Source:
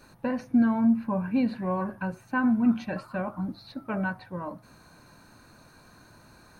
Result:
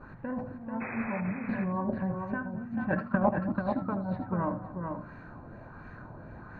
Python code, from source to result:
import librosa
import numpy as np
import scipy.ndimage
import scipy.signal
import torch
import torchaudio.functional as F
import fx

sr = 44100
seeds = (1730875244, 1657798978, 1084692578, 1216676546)

p1 = fx.low_shelf(x, sr, hz=330.0, db=9.0)
p2 = fx.over_compress(p1, sr, threshold_db=-29.0, ratio=-1.0)
p3 = fx.filter_lfo_lowpass(p2, sr, shape='sine', hz=1.4, low_hz=600.0, high_hz=1900.0, q=2.5)
p4 = fx.spec_paint(p3, sr, seeds[0], shape='noise', start_s=0.8, length_s=0.41, low_hz=260.0, high_hz=2600.0, level_db=-33.0)
p5 = fx.transient(p4, sr, attack_db=10, sustain_db=-9, at=(2.88, 3.38), fade=0.02)
p6 = p5 + fx.echo_multitap(p5, sr, ms=(80, 229, 438, 520), db=(-13.5, -17.0, -5.5, -17.5), dry=0)
y = p6 * 10.0 ** (-6.5 / 20.0)